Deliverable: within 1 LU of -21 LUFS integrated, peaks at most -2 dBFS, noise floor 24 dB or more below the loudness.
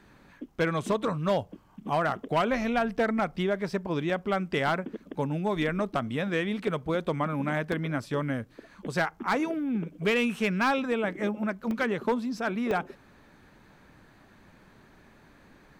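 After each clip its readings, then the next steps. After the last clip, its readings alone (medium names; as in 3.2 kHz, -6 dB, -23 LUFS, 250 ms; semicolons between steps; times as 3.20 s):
clipped samples 0.6%; clipping level -19.0 dBFS; dropouts 4; longest dropout 1.6 ms; loudness -29.0 LUFS; peak level -19.0 dBFS; loudness target -21.0 LUFS
-> clip repair -19 dBFS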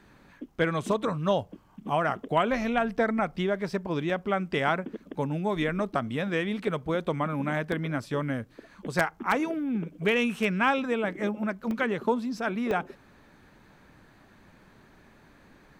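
clipped samples 0.0%; dropouts 4; longest dropout 1.6 ms
-> interpolate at 0.86/7.72/11.71/12.71 s, 1.6 ms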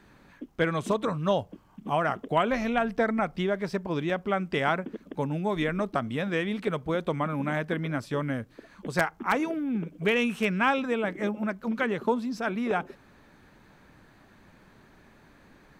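dropouts 0; loudness -28.5 LUFS; peak level -10.0 dBFS; loudness target -21.0 LUFS
-> trim +7.5 dB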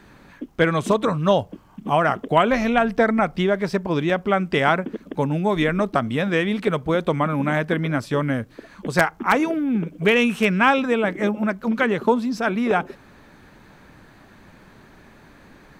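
loudness -21.0 LUFS; peak level -2.5 dBFS; noise floor -50 dBFS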